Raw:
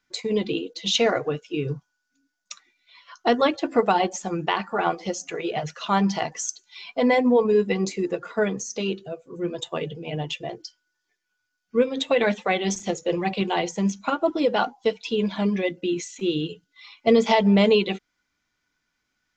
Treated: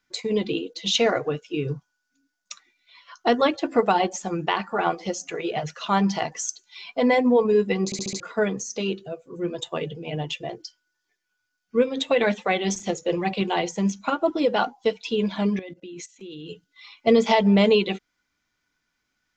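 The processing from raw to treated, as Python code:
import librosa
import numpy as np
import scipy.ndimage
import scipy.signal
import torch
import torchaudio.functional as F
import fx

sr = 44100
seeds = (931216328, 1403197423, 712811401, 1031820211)

y = fx.level_steps(x, sr, step_db=19, at=(15.59, 16.48))
y = fx.edit(y, sr, fx.stutter_over(start_s=7.85, slice_s=0.07, count=5), tone=tone)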